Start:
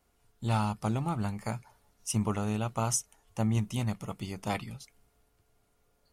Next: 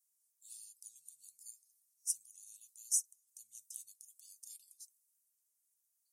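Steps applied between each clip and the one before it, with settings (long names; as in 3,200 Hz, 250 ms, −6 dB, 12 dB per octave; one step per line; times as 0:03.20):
inverse Chebyshev high-pass filter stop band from 1,600 Hz, stop band 70 dB
level +1 dB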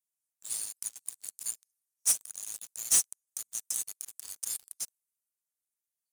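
leveller curve on the samples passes 5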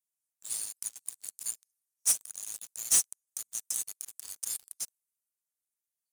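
no processing that can be heard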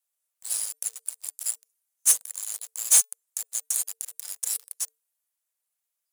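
frequency shifter +450 Hz
level +6.5 dB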